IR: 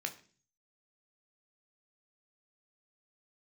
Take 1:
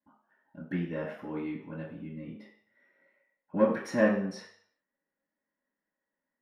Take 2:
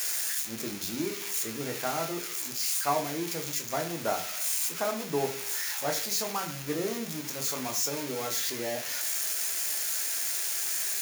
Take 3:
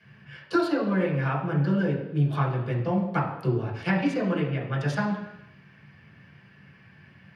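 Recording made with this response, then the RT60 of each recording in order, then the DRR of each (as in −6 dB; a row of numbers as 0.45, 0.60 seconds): 2; 0.60, 0.40, 0.85 seconds; −16.0, 5.0, −6.5 decibels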